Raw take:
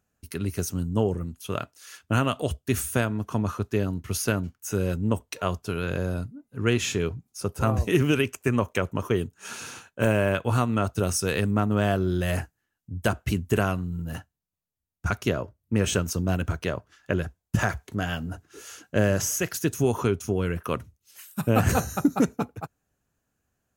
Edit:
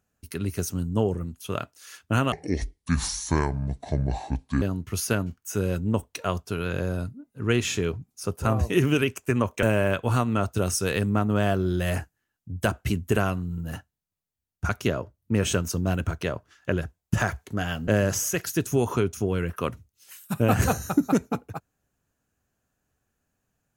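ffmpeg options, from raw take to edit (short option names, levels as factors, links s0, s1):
-filter_complex "[0:a]asplit=5[s0][s1][s2][s3][s4];[s0]atrim=end=2.324[s5];[s1]atrim=start=2.32:end=3.79,asetpts=PTS-STARTPTS,asetrate=28224,aresample=44100,atrim=end_sample=101292,asetpts=PTS-STARTPTS[s6];[s2]atrim=start=3.786:end=8.802[s7];[s3]atrim=start=10.038:end=18.292[s8];[s4]atrim=start=18.948[s9];[s5][s6]acrossfade=d=0.004:c1=hsin:c2=hsin[s10];[s10][s7]acrossfade=d=0.004:c1=hsin:c2=hsin[s11];[s11][s8]acrossfade=d=0.004:c1=hsin:c2=hsin[s12];[s12][s9]acrossfade=d=0.004:c1=hsin:c2=hsin"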